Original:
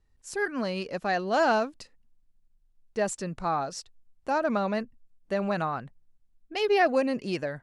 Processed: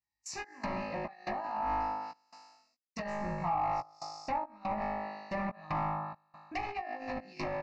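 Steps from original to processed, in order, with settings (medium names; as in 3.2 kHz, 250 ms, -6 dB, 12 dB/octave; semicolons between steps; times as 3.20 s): high-pass 130 Hz 12 dB/octave; gate -50 dBFS, range -26 dB; flutter echo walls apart 3.3 m, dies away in 1.1 s; compressor with a negative ratio -24 dBFS, ratio -0.5; trance gate "xx.xx.xx" 71 bpm -24 dB; overload inside the chain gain 27 dB; static phaser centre 2.2 kHz, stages 8; doubling 17 ms -7 dB; low-pass that closes with the level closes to 1.5 kHz, closed at -31 dBFS; tape noise reduction on one side only encoder only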